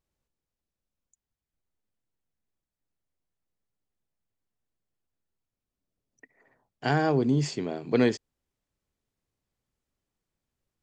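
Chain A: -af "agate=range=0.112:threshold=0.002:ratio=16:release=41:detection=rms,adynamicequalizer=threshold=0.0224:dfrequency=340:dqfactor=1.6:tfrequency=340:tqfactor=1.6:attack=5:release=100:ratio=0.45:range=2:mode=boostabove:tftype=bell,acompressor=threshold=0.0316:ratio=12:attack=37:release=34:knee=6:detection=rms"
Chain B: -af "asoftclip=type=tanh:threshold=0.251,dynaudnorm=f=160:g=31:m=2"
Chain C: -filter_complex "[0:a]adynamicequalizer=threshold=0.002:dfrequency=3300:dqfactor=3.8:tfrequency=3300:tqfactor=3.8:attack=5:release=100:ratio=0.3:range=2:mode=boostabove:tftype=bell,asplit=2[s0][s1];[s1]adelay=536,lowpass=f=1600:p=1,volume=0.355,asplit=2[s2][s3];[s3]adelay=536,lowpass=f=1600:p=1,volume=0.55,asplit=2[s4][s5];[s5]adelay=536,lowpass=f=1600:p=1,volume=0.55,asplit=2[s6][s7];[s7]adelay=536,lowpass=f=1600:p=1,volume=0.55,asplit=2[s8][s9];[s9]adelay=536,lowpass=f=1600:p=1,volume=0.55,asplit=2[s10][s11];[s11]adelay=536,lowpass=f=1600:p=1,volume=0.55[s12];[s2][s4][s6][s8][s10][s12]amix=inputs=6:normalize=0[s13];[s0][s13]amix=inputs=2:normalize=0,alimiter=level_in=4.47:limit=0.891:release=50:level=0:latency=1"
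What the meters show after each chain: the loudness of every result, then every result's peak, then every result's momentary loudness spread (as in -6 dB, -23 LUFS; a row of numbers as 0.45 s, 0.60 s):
-32.0 LUFS, -22.0 LUFS, -16.0 LUFS; -15.0 dBFS, -8.0 dBFS, -1.0 dBFS; 6 LU, 10 LU, 19 LU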